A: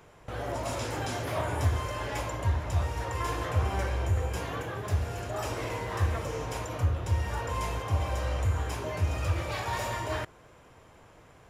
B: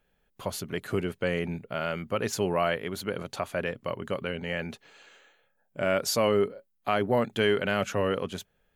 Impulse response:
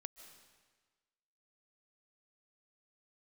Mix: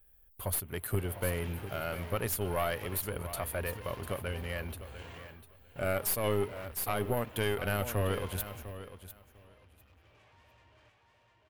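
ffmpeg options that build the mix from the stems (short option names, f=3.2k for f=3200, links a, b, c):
-filter_complex "[0:a]highshelf=f=4.1k:t=q:w=3:g=-11.5,asoftclip=type=tanh:threshold=-34.5dB,adelay=650,volume=-11dB,asplit=2[a][b];[b]volume=-19.5dB[c];[1:a]lowshelf=f=110:t=q:w=1.5:g=13,aexciter=amount=8.5:drive=7:freq=9.2k,aeval=exprs='(tanh(4.47*val(0)+0.8)-tanh(0.8))/4.47':c=same,volume=0dB,asplit=3[d][e][f];[e]volume=-13dB[g];[f]apad=whole_len=535591[h];[a][h]sidechaingate=range=-16dB:threshold=-59dB:ratio=16:detection=peak[i];[c][g]amix=inputs=2:normalize=0,aecho=0:1:699|1398|2097:1|0.16|0.0256[j];[i][d][j]amix=inputs=3:normalize=0,alimiter=limit=-19dB:level=0:latency=1:release=167"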